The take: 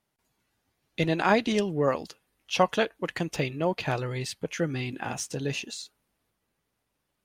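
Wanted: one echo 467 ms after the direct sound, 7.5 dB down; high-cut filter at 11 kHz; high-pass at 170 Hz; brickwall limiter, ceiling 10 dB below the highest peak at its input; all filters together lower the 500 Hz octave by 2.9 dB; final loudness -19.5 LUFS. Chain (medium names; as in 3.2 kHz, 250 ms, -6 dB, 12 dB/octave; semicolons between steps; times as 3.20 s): high-pass 170 Hz; low-pass 11 kHz; peaking EQ 500 Hz -3.5 dB; peak limiter -18.5 dBFS; delay 467 ms -7.5 dB; trim +13 dB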